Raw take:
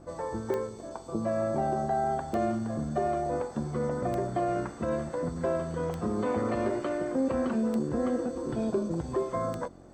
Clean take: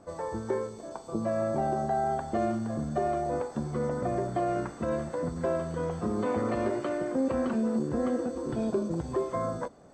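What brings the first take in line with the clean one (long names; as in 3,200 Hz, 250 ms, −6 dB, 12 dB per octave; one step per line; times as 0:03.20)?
click removal
hum removal 45 Hz, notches 8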